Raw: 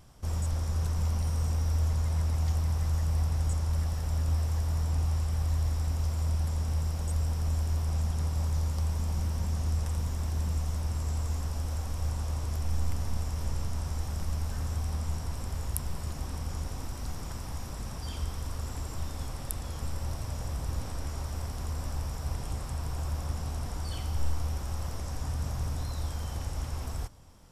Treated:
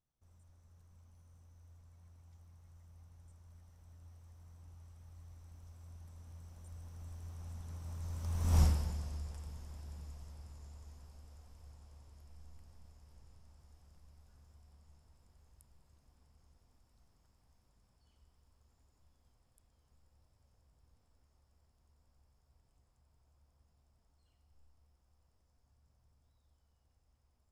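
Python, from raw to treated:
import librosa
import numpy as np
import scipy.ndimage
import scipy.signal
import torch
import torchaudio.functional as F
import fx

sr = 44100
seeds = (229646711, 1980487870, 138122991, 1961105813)

y = fx.doppler_pass(x, sr, speed_mps=21, closest_m=1.4, pass_at_s=8.6)
y = fx.rider(y, sr, range_db=4, speed_s=2.0)
y = F.gain(torch.from_numpy(y), 4.0).numpy()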